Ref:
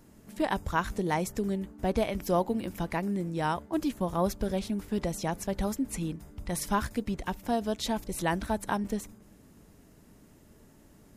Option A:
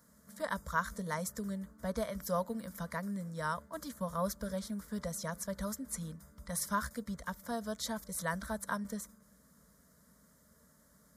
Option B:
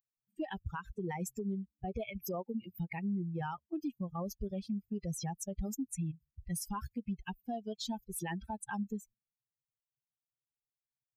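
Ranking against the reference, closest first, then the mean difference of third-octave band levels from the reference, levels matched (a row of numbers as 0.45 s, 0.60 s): A, B; 5.0 dB, 14.0 dB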